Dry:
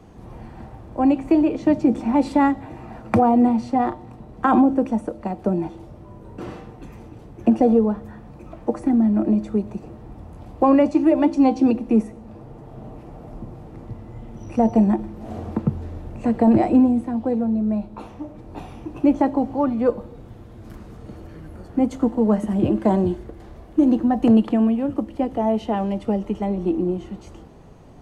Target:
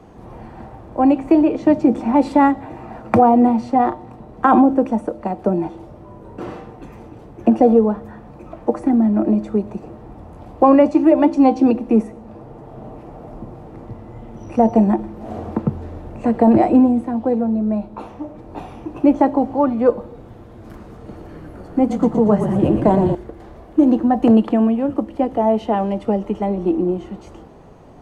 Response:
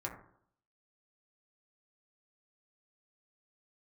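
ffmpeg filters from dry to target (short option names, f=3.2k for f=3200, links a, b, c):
-filter_complex "[0:a]equalizer=f=720:w=0.36:g=6.5,asettb=1/sr,asplit=3[a][b][c];[a]atrim=end=20.954[d];[b]atrim=start=20.95:end=23.15,asetpts=PTS-STARTPTS,afade=t=in:d=0.004:c=qsin,afade=t=out:st=2.196:d=0.004:c=qsin,asplit=8[e][f][g][h][i][j][k][l];[f]adelay=117,afreqshift=-37,volume=-7.5dB[m];[g]adelay=234,afreqshift=-74,volume=-12.2dB[n];[h]adelay=351,afreqshift=-111,volume=-17dB[o];[i]adelay=468,afreqshift=-148,volume=-21.7dB[p];[j]adelay=585,afreqshift=-185,volume=-26.4dB[q];[k]adelay=702,afreqshift=-222,volume=-31.2dB[r];[l]adelay=819,afreqshift=-259,volume=-35.9dB[s];[e][m][n][o][p][q][r][s]amix=inputs=8:normalize=0,atrim=end_sample=97020[t];[c]atrim=start=23.146[u];[d][t]acrossfade=d=0.004:c1=hsin:c2=qsin[v];[v][u]acrossfade=d=0.004:c1=qsin:c2=hsin,volume=-1dB"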